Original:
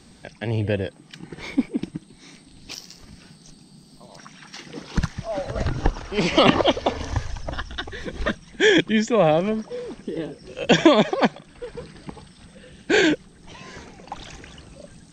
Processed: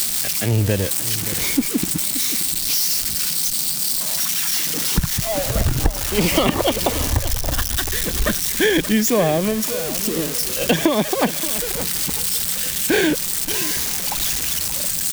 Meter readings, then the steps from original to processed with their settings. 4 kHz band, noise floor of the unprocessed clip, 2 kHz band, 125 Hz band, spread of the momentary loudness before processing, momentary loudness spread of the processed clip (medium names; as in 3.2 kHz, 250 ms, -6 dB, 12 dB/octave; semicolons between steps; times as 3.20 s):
+6.0 dB, -50 dBFS, +1.0 dB, +5.0 dB, 22 LU, 4 LU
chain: zero-crossing glitches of -14 dBFS; bass shelf 200 Hz +6.5 dB; compression, threshold -17 dBFS, peak gain reduction 10 dB; delay 577 ms -14 dB; trim +3.5 dB